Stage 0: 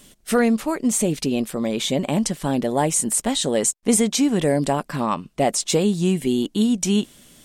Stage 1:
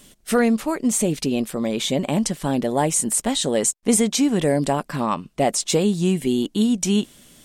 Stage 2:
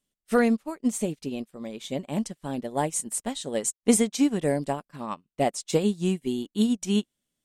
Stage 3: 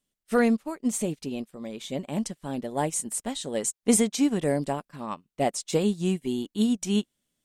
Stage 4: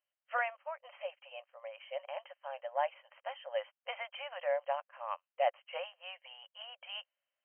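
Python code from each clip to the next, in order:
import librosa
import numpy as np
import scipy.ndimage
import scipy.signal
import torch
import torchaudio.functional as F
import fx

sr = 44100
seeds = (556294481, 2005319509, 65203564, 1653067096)

y1 = x
y2 = fx.upward_expand(y1, sr, threshold_db=-36.0, expansion=2.5)
y3 = fx.transient(y2, sr, attack_db=-2, sustain_db=3)
y4 = fx.brickwall_bandpass(y3, sr, low_hz=510.0, high_hz=3200.0)
y4 = F.gain(torch.from_numpy(y4), -3.5).numpy()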